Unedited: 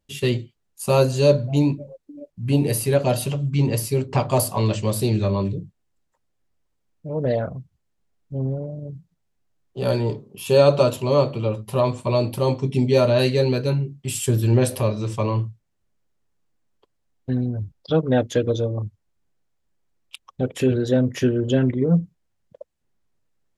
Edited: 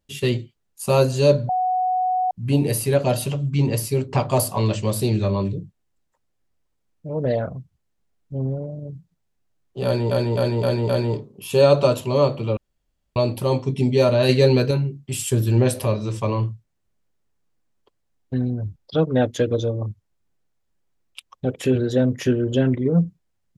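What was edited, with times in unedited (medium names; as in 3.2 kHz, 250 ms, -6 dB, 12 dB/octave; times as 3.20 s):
1.49–2.31 s: bleep 739 Hz -18 dBFS
9.85–10.11 s: loop, 5 plays
11.53–12.12 s: room tone
13.25–13.67 s: gain +4 dB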